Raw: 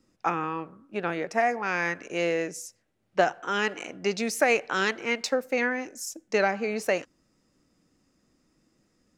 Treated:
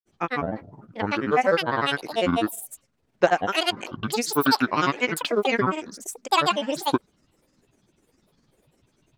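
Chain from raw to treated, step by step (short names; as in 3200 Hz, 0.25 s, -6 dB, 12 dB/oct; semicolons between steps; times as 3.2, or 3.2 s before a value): grains 83 ms, pitch spread up and down by 12 st; gain +5.5 dB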